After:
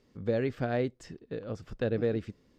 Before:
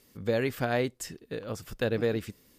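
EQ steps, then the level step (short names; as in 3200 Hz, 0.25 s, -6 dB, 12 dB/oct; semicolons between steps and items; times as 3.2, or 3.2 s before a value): dynamic EQ 960 Hz, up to -6 dB, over -50 dBFS, Q 2.4; air absorption 160 m; bell 2600 Hz -5.5 dB 2.1 oct; 0.0 dB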